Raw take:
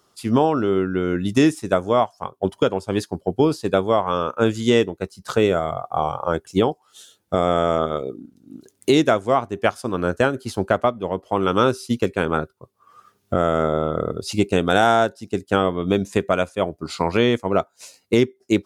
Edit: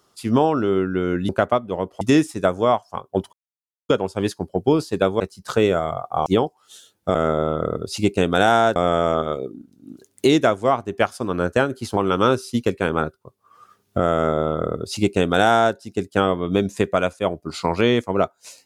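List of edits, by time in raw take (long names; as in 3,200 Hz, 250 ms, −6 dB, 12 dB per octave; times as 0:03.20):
0:02.61: splice in silence 0.56 s
0:03.92–0:05.00: remove
0:06.06–0:06.51: remove
0:10.61–0:11.33: move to 0:01.29
0:13.50–0:15.11: duplicate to 0:07.40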